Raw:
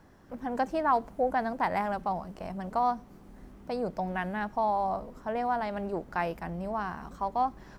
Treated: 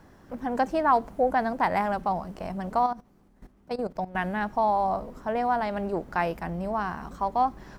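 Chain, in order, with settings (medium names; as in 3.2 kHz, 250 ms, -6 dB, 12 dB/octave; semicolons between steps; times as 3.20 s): 2.86–4.15 s: level held to a coarse grid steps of 16 dB; trim +4 dB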